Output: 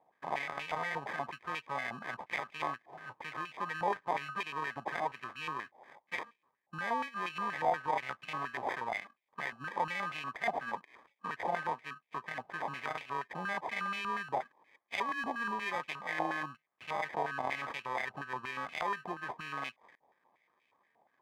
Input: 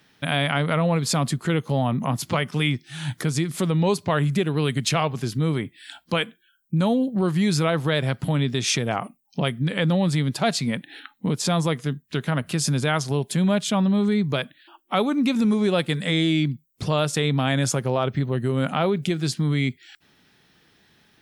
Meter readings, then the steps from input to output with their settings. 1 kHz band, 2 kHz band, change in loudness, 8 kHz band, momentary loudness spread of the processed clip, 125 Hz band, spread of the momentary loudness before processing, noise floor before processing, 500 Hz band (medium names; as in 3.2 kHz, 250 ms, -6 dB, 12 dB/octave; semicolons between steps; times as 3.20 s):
-5.0 dB, -7.0 dB, -14.0 dB, -27.0 dB, 7 LU, -30.5 dB, 7 LU, -62 dBFS, -16.0 dB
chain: sample-rate reducer 1.4 kHz, jitter 0%; vibrato 0.85 Hz 5.9 cents; step-sequenced band-pass 8.4 Hz 800–2500 Hz